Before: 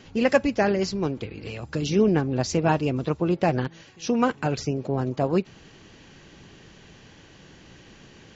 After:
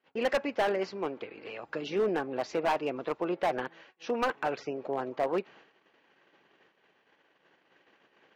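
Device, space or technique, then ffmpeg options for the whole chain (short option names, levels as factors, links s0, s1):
walkie-talkie: -af "highpass=510,lowpass=2200,asoftclip=type=hard:threshold=0.075,agate=range=0.0562:threshold=0.002:ratio=16:detection=peak"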